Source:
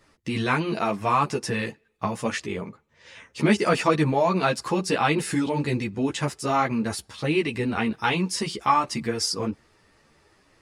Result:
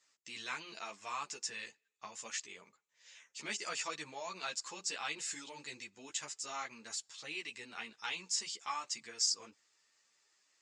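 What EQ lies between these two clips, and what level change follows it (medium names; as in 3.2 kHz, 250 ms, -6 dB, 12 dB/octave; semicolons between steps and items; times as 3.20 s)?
band-pass filter 7.3 kHz, Q 5.7; distance through air 140 m; +14.0 dB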